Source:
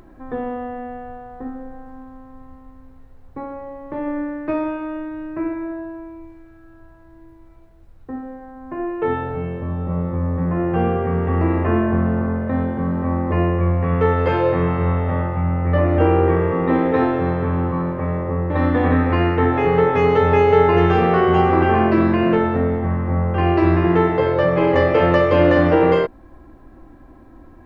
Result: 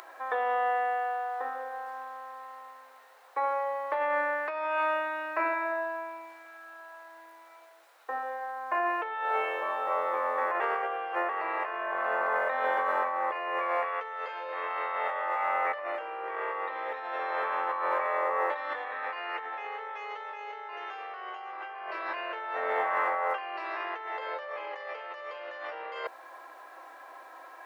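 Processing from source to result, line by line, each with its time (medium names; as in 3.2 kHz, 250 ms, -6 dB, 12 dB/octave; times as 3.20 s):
10.60–11.29 s: reverse
whole clip: Bessel high-pass 940 Hz, order 6; compressor with a negative ratio -37 dBFS, ratio -1; trim +3.5 dB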